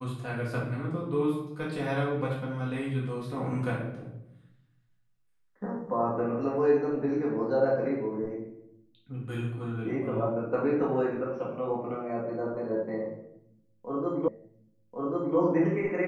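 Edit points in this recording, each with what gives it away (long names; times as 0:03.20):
0:14.28: the same again, the last 1.09 s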